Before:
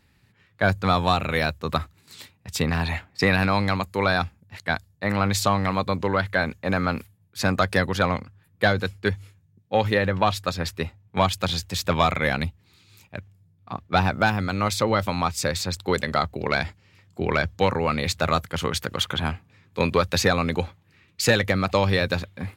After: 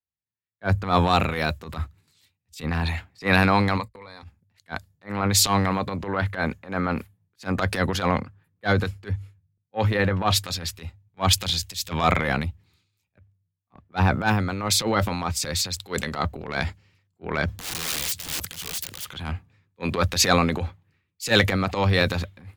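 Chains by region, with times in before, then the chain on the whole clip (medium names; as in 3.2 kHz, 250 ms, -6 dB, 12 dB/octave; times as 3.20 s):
3.77–4.23 s: gate -38 dBFS, range -34 dB + rippled EQ curve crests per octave 0.96, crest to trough 12 dB + compression 8:1, threshold -29 dBFS
17.44–19.09 s: high-pass 89 Hz + transient shaper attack -3 dB, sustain +7 dB + integer overflow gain 22.5 dB
whole clip: band-stop 600 Hz, Q 19; transient shaper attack -12 dB, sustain +6 dB; three bands expanded up and down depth 100%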